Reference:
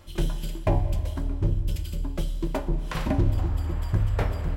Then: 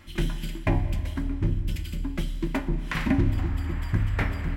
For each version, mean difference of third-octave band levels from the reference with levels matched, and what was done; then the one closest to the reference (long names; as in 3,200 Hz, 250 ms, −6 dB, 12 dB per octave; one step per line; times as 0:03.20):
2.5 dB: graphic EQ with 10 bands 250 Hz +9 dB, 500 Hz −7 dB, 2,000 Hz +11 dB
level −2 dB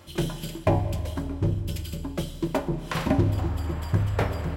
1.0 dB: high-pass filter 91 Hz 12 dB per octave
level +3.5 dB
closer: second